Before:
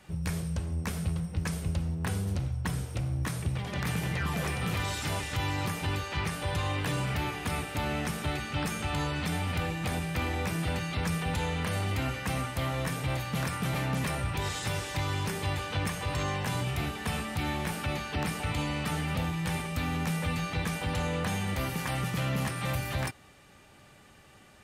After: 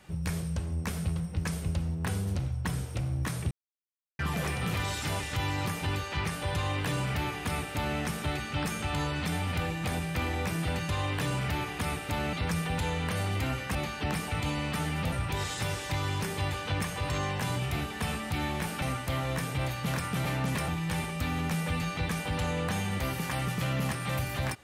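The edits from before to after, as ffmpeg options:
ffmpeg -i in.wav -filter_complex "[0:a]asplit=9[link_01][link_02][link_03][link_04][link_05][link_06][link_07][link_08][link_09];[link_01]atrim=end=3.51,asetpts=PTS-STARTPTS,afade=type=out:start_time=3.506:duration=0.004:curve=hsin[link_10];[link_02]atrim=start=3.51:end=4.19,asetpts=PTS-STARTPTS,volume=0[link_11];[link_03]atrim=start=4.19:end=10.892,asetpts=PTS-STARTPTS,afade=type=in:duration=0.004:curve=hsin[link_12];[link_04]atrim=start=6.548:end=7.992[link_13];[link_05]atrim=start=10.888:end=12.312[link_14];[link_06]atrim=start=17.868:end=19.242[link_15];[link_07]atrim=start=14.168:end=17.872[link_16];[link_08]atrim=start=12.308:end=14.172[link_17];[link_09]atrim=start=19.238[link_18];[link_10][link_11][link_12]concat=n=3:v=0:a=1[link_19];[link_19][link_13]acrossfade=duration=0.004:curve1=hsin:curve2=hsin[link_20];[link_20][link_14]acrossfade=duration=0.004:curve1=hsin:curve2=hsin[link_21];[link_21][link_15]acrossfade=duration=0.004:curve1=hsin:curve2=hsin[link_22];[link_22][link_16]acrossfade=duration=0.004:curve1=hsin:curve2=hsin[link_23];[link_23][link_17]acrossfade=duration=0.004:curve1=hsin:curve2=hsin[link_24];[link_24][link_18]acrossfade=duration=0.004:curve1=hsin:curve2=hsin" out.wav

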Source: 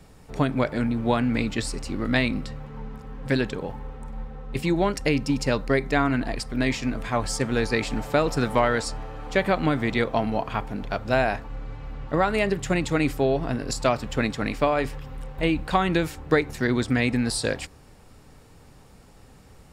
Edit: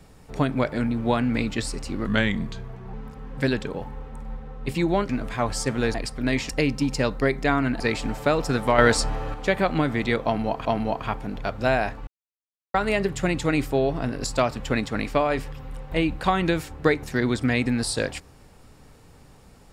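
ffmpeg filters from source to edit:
ffmpeg -i in.wav -filter_complex "[0:a]asplit=12[link_01][link_02][link_03][link_04][link_05][link_06][link_07][link_08][link_09][link_10][link_11][link_12];[link_01]atrim=end=2.064[link_13];[link_02]atrim=start=2.06:end=2.81,asetpts=PTS-STARTPTS,asetrate=37926,aresample=44100,atrim=end_sample=38459,asetpts=PTS-STARTPTS[link_14];[link_03]atrim=start=2.806:end=4.972[link_15];[link_04]atrim=start=6.828:end=7.682[link_16];[link_05]atrim=start=6.278:end=6.832[link_17];[link_06]atrim=start=4.968:end=6.282[link_18];[link_07]atrim=start=7.678:end=8.662[link_19];[link_08]atrim=start=8.658:end=9.222,asetpts=PTS-STARTPTS,volume=7dB[link_20];[link_09]atrim=start=9.218:end=10.532[link_21];[link_10]atrim=start=10.118:end=11.54,asetpts=PTS-STARTPTS,afade=type=out:start_time=1.418:duration=0.004:curve=hsin[link_22];[link_11]atrim=start=11.54:end=12.21,asetpts=PTS-STARTPTS,volume=0[link_23];[link_12]atrim=start=12.21,asetpts=PTS-STARTPTS,afade=type=in:duration=0.004:curve=hsin[link_24];[link_13][link_14]acrossfade=duration=0.004:curve1=hsin:curve2=hsin[link_25];[link_25][link_15]acrossfade=duration=0.004:curve1=hsin:curve2=hsin[link_26];[link_26][link_16]acrossfade=duration=0.004:curve1=hsin:curve2=hsin[link_27];[link_27][link_17]acrossfade=duration=0.004:curve1=hsin:curve2=hsin[link_28];[link_28][link_18]acrossfade=duration=0.004:curve1=hsin:curve2=hsin[link_29];[link_29][link_19]acrossfade=duration=0.004:curve1=hsin:curve2=hsin[link_30];[link_30][link_20]acrossfade=duration=0.004:curve1=hsin:curve2=hsin[link_31];[link_31][link_21]acrossfade=duration=0.004:curve1=hsin:curve2=hsin[link_32];[link_22][link_23][link_24]concat=n=3:v=0:a=1[link_33];[link_32][link_33]acrossfade=duration=0.004:curve1=hsin:curve2=hsin" out.wav

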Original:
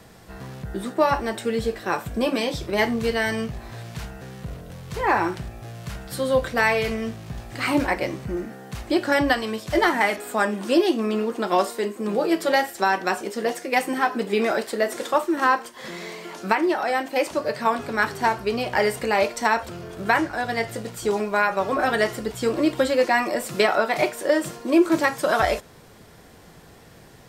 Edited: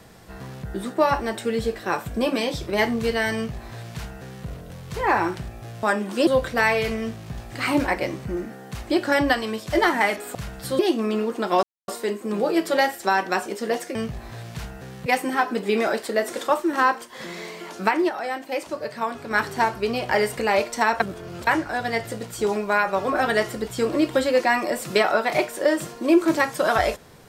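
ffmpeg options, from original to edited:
ffmpeg -i in.wav -filter_complex "[0:a]asplit=12[link_01][link_02][link_03][link_04][link_05][link_06][link_07][link_08][link_09][link_10][link_11][link_12];[link_01]atrim=end=5.832[link_13];[link_02]atrim=start=10.348:end=10.792[link_14];[link_03]atrim=start=6.268:end=10.352[link_15];[link_04]atrim=start=5.828:end=6.272[link_16];[link_05]atrim=start=10.788:end=11.63,asetpts=PTS-STARTPTS,afade=type=out:start_time=0.838:duration=0.004:curve=hsin,apad=pad_dur=0.25[link_17];[link_06]atrim=start=11.63:end=13.702,asetpts=PTS-STARTPTS,afade=type=in:duration=0.004:curve=hsin[link_18];[link_07]atrim=start=3.348:end=4.462[link_19];[link_08]atrim=start=13.698:end=16.732[link_20];[link_09]atrim=start=16.728:end=17.952,asetpts=PTS-STARTPTS,volume=-5dB[link_21];[link_10]atrim=start=17.948:end=19.642[link_22];[link_11]atrim=start=19.638:end=20.112,asetpts=PTS-STARTPTS,areverse[link_23];[link_12]atrim=start=20.108[link_24];[link_13][link_14]acrossfade=duration=0.004:curve1=hsin:curve2=hsin[link_25];[link_25][link_15]acrossfade=duration=0.004:curve1=hsin:curve2=hsin[link_26];[link_26][link_16]acrossfade=duration=0.004:curve1=hsin:curve2=hsin[link_27];[link_17][link_18]concat=n=2:v=0:a=1[link_28];[link_27][link_28]acrossfade=duration=0.004:curve1=hsin:curve2=hsin[link_29];[link_29][link_19]acrossfade=duration=0.004:curve1=hsin:curve2=hsin[link_30];[link_30][link_20]acrossfade=duration=0.004:curve1=hsin:curve2=hsin[link_31];[link_31][link_21]acrossfade=duration=0.004:curve1=hsin:curve2=hsin[link_32];[link_32][link_22]acrossfade=duration=0.004:curve1=hsin:curve2=hsin[link_33];[link_33][link_23]acrossfade=duration=0.004:curve1=hsin:curve2=hsin[link_34];[link_34][link_24]acrossfade=duration=0.004:curve1=hsin:curve2=hsin" out.wav

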